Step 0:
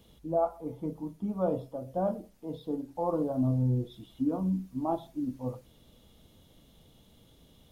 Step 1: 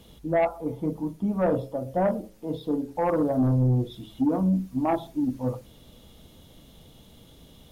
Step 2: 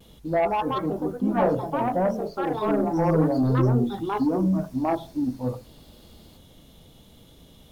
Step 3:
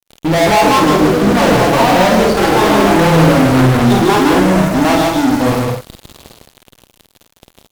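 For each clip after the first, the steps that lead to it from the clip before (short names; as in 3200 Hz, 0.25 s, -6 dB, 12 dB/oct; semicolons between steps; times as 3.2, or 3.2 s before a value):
de-hum 107.3 Hz, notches 5; sine folder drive 4 dB, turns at -17.5 dBFS
vibrato 0.32 Hz 15 cents; echoes that change speed 0.248 s, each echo +4 st, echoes 2
fuzz box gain 38 dB, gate -43 dBFS; on a send: loudspeakers at several distances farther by 17 m -4 dB, 53 m -3 dB, 74 m -8 dB; on the sum: gain +1.5 dB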